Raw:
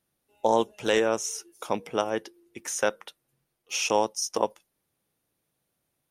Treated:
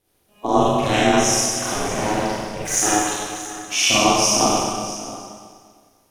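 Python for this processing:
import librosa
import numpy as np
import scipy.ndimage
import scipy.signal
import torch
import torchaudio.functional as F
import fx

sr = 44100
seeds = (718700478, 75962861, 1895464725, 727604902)

p1 = fx.spec_quant(x, sr, step_db=15)
p2 = fx.over_compress(p1, sr, threshold_db=-30.0, ratio=-1.0)
p3 = p1 + (p2 * librosa.db_to_amplitude(2.5))
p4 = fx.overload_stage(p3, sr, gain_db=21.0, at=(1.5, 2.7), fade=0.02)
p5 = p4 + fx.echo_single(p4, sr, ms=630, db=-15.5, dry=0)
p6 = fx.rev_schroeder(p5, sr, rt60_s=1.8, comb_ms=31, drr_db=-9.0)
p7 = p6 * np.sin(2.0 * np.pi * 210.0 * np.arange(len(p6)) / sr)
y = p7 * librosa.db_to_amplitude(-1.0)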